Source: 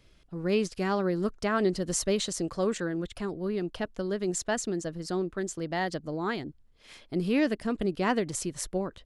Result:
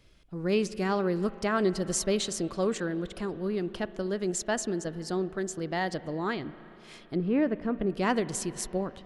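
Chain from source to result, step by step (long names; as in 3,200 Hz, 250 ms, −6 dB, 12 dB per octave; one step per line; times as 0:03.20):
0:06.32–0:07.90: treble cut that deepens with the level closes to 1,500 Hz, closed at −25.5 dBFS
spring reverb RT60 3.7 s, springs 37/57 ms, chirp 75 ms, DRR 15 dB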